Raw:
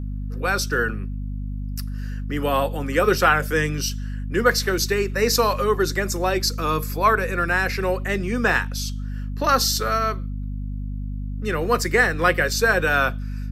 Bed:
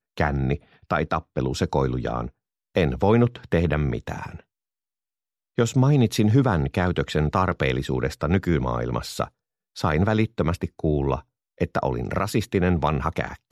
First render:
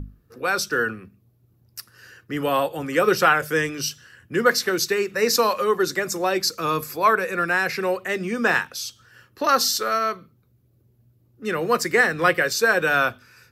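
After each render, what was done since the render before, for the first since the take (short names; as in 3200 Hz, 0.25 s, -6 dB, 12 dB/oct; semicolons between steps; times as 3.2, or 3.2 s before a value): notches 50/100/150/200/250 Hz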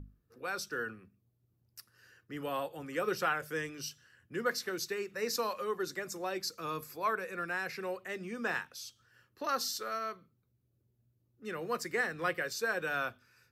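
gain -14.5 dB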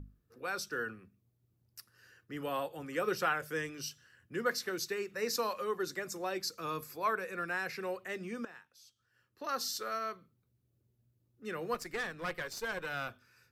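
8.45–9.77 fade in quadratic, from -18.5 dB; 11.74–13.09 tube stage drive 30 dB, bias 0.75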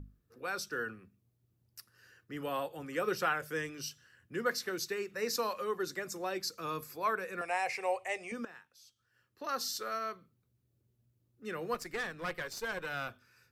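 7.41–8.32 EQ curve 100 Hz 0 dB, 210 Hz -19 dB, 780 Hz +14 dB, 1500 Hz -9 dB, 2200 Hz +10 dB, 3800 Hz -2 dB, 9300 Hz +11 dB, 14000 Hz -14 dB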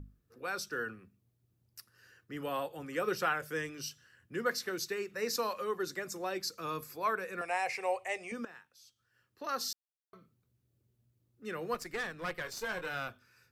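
9.73–10.13 mute; 12.42–12.99 doubler 23 ms -8 dB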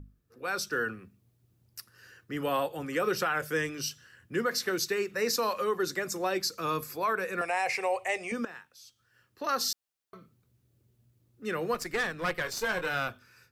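AGC gain up to 7 dB; limiter -19.5 dBFS, peak gain reduction 7.5 dB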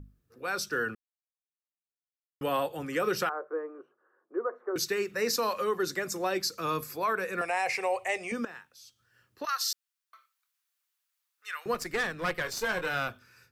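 0.95–2.41 mute; 3.29–4.76 elliptic band-pass 350–1200 Hz, stop band 60 dB; 9.45–11.66 HPF 1100 Hz 24 dB/oct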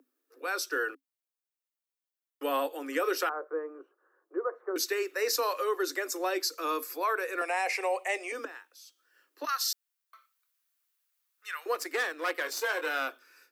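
Chebyshev high-pass 270 Hz, order 8; high shelf 12000 Hz +7.5 dB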